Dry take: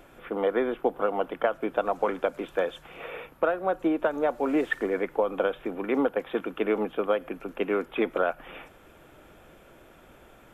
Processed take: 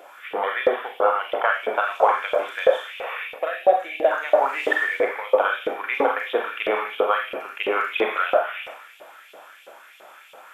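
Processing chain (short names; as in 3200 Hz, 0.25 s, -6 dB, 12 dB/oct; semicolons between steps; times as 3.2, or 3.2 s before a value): Schroeder reverb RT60 0.76 s, combs from 29 ms, DRR -1 dB; spectral gain 3.38–4.11, 780–1600 Hz -15 dB; LFO high-pass saw up 3 Hz 510–3200 Hz; gain +4 dB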